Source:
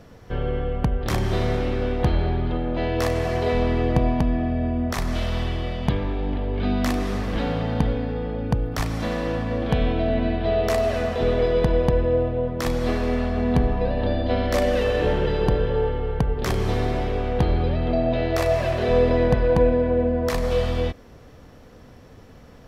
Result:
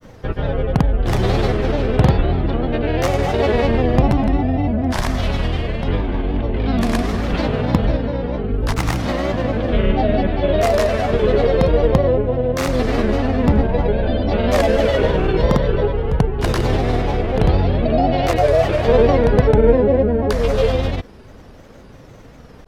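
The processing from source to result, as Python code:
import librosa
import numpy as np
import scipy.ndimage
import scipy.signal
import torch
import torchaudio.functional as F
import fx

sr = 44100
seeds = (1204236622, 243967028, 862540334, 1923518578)

y = fx.granulator(x, sr, seeds[0], grain_ms=100.0, per_s=20.0, spray_ms=100.0, spread_st=3)
y = y * librosa.db_to_amplitude(6.5)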